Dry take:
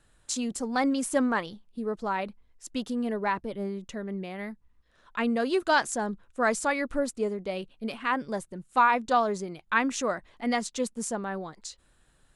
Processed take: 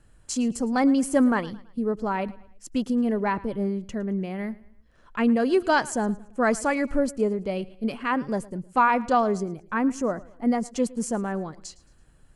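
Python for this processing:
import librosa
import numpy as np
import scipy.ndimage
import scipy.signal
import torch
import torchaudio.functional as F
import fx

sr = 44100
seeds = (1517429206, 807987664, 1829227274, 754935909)

y = fx.low_shelf(x, sr, hz=430.0, db=9.0)
y = fx.notch(y, sr, hz=3700.0, q=6.3)
y = fx.peak_eq(y, sr, hz=3300.0, db=-12.5, octaves=2.0, at=(9.43, 10.71))
y = fx.echo_feedback(y, sr, ms=110, feedback_pct=41, wet_db=-21.0)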